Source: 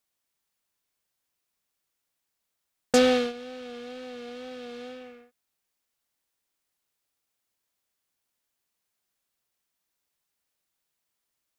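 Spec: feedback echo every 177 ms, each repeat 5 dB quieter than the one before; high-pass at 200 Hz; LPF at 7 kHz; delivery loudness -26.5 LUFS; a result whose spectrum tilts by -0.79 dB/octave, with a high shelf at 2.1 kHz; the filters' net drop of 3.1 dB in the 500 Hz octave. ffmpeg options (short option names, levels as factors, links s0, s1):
-af "highpass=200,lowpass=7000,equalizer=f=500:t=o:g=-3.5,highshelf=f=2100:g=8.5,aecho=1:1:177|354|531|708|885|1062|1239:0.562|0.315|0.176|0.0988|0.0553|0.031|0.0173,volume=0.841"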